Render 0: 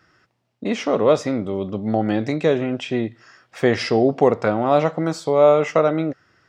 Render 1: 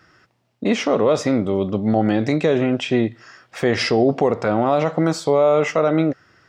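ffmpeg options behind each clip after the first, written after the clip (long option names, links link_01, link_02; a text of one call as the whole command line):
ffmpeg -i in.wav -af "alimiter=level_in=10.5dB:limit=-1dB:release=50:level=0:latency=1,volume=-6dB" out.wav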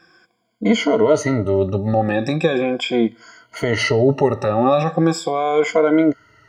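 ffmpeg -i in.wav -af "afftfilt=real='re*pow(10,22/40*sin(2*PI*(1.8*log(max(b,1)*sr/1024/100)/log(2)-(-0.39)*(pts-256)/sr)))':imag='im*pow(10,22/40*sin(2*PI*(1.8*log(max(b,1)*sr/1024/100)/log(2)-(-0.39)*(pts-256)/sr)))':win_size=1024:overlap=0.75,volume=-3dB" out.wav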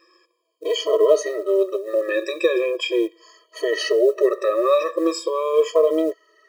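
ffmpeg -i in.wav -af "acrusher=bits=9:mode=log:mix=0:aa=0.000001,afftfilt=real='re*eq(mod(floor(b*sr/1024/330),2),1)':imag='im*eq(mod(floor(b*sr/1024/330),2),1)':win_size=1024:overlap=0.75" out.wav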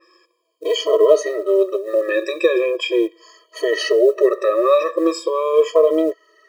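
ffmpeg -i in.wav -af "adynamicequalizer=threshold=0.01:dfrequency=3500:dqfactor=0.7:tfrequency=3500:tqfactor=0.7:attack=5:release=100:ratio=0.375:range=2:mode=cutabove:tftype=highshelf,volume=3dB" out.wav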